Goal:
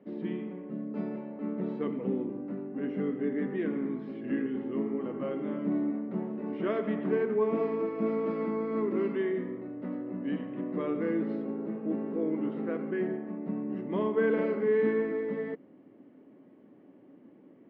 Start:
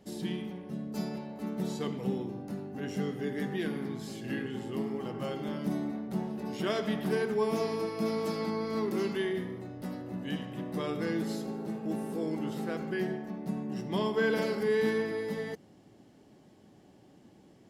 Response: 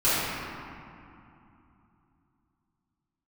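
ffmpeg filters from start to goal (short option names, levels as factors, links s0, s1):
-af "highpass=220,equalizer=f=270:t=q:w=4:g=8,equalizer=f=520:t=q:w=4:g=3,equalizer=f=790:t=q:w=4:g=-9,equalizer=f=1600:t=q:w=4:g=-5,lowpass=f=2100:w=0.5412,lowpass=f=2100:w=1.3066,volume=1.19"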